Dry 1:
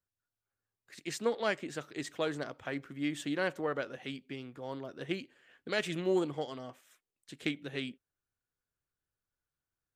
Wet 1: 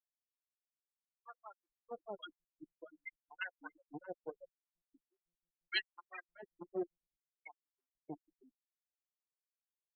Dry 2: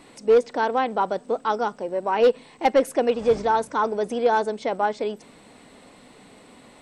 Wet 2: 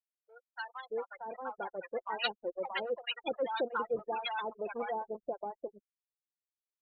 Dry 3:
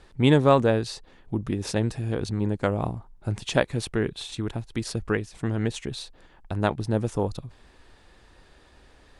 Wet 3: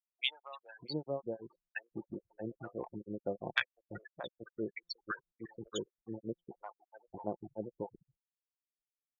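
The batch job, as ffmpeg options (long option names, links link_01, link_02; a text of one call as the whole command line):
ffmpeg -i in.wav -filter_complex "[0:a]acrossover=split=840[link_01][link_02];[link_01]aeval=exprs='val(0)*(1-1/2+1/2*cos(2*PI*6*n/s))':channel_layout=same[link_03];[link_02]aeval=exprs='val(0)*(1-1/2-1/2*cos(2*PI*6*n/s))':channel_layout=same[link_04];[link_03][link_04]amix=inputs=2:normalize=0,acrusher=bits=6:dc=4:mix=0:aa=0.000001,afftfilt=real='re*gte(hypot(re,im),0.0447)':imag='im*gte(hypot(re,im),0.0447)':win_size=1024:overlap=0.75,acrossover=split=450[link_05][link_06];[link_06]acompressor=threshold=-30dB:ratio=6[link_07];[link_05][link_07]amix=inputs=2:normalize=0,highshelf=frequency=8700:gain=-10.5,aecho=1:1:5.7:0.33,acrossover=split=880[link_08][link_09];[link_08]adelay=630[link_10];[link_10][link_09]amix=inputs=2:normalize=0,dynaudnorm=framelen=260:gausssize=13:maxgain=6.5dB,aderivative,volume=10.5dB" out.wav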